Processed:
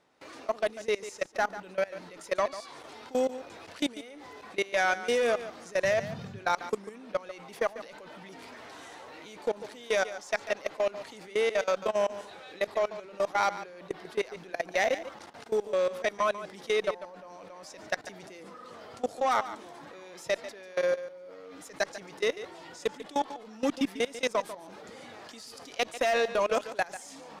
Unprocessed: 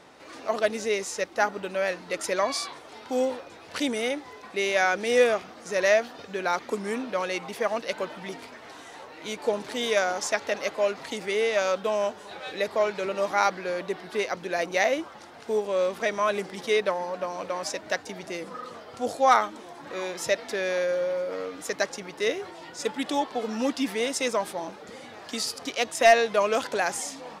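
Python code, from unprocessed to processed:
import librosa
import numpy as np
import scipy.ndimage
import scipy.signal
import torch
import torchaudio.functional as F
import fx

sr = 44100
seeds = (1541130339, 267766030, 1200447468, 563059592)

p1 = fx.cheby_harmonics(x, sr, harmonics=(2, 5, 8), levels_db=(-23, -19, -31), full_scale_db=-8.0)
p2 = fx.level_steps(p1, sr, step_db=22)
p3 = fx.dmg_noise_band(p2, sr, seeds[0], low_hz=98.0, high_hz=220.0, level_db=-39.0, at=(5.83, 6.39), fade=0.02)
p4 = p3 + fx.echo_single(p3, sr, ms=144, db=-13.5, dry=0)
y = F.gain(torch.from_numpy(p4), -3.0).numpy()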